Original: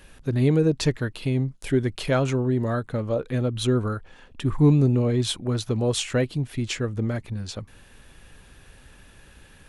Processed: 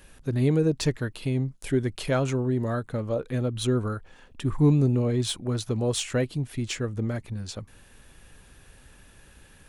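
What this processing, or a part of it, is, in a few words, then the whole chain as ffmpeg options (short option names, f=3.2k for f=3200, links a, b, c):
exciter from parts: -filter_complex "[0:a]asplit=2[a][b];[b]highpass=4.9k,asoftclip=type=tanh:threshold=-30dB,volume=-5dB[c];[a][c]amix=inputs=2:normalize=0,volume=-2.5dB"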